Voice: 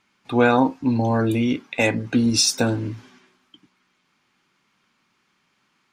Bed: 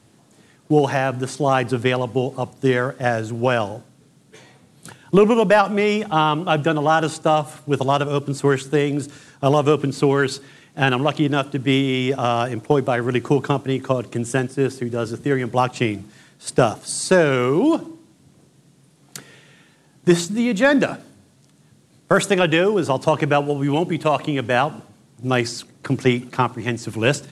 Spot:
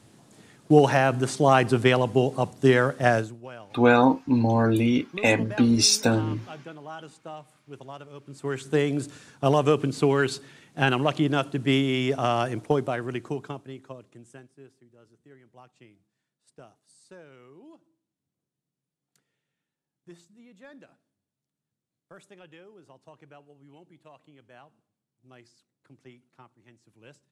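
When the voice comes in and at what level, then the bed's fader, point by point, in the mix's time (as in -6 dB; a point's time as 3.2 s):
3.45 s, -1.0 dB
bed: 3.19 s -0.5 dB
3.41 s -23 dB
8.18 s -23 dB
8.75 s -4.5 dB
12.61 s -4.5 dB
14.88 s -33.5 dB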